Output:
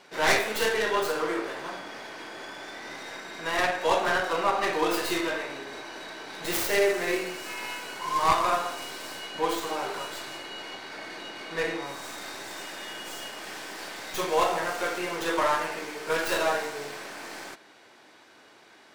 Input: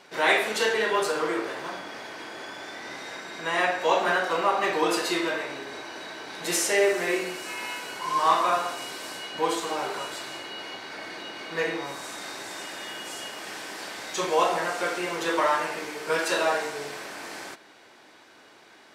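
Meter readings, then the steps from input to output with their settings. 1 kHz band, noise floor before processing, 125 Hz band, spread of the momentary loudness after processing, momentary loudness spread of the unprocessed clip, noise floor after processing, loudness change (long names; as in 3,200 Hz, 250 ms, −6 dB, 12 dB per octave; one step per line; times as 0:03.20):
−1.5 dB, −53 dBFS, +1.0 dB, 15 LU, 15 LU, −55 dBFS, −1.5 dB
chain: stylus tracing distortion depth 0.24 ms
level −1.5 dB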